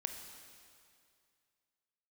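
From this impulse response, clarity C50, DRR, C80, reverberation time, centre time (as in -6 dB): 6.0 dB, 5.0 dB, 7.0 dB, 2.3 s, 47 ms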